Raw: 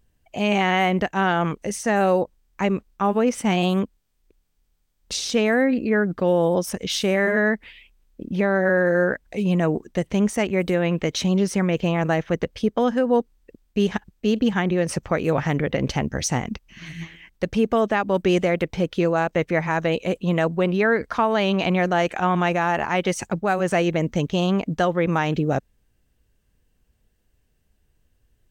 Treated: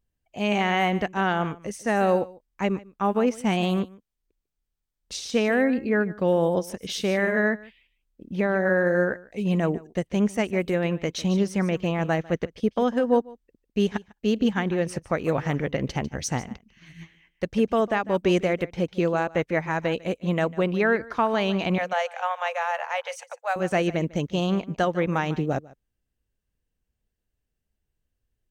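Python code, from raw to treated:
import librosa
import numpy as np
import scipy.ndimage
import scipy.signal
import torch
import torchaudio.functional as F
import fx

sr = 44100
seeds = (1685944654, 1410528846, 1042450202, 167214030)

y = fx.cheby1_highpass(x, sr, hz=480.0, order=8, at=(21.78, 23.56))
y = y + 10.0 ** (-15.0 / 20.0) * np.pad(y, (int(149 * sr / 1000.0), 0))[:len(y)]
y = fx.upward_expand(y, sr, threshold_db=-41.0, expansion=1.5)
y = y * 10.0 ** (-1.0 / 20.0)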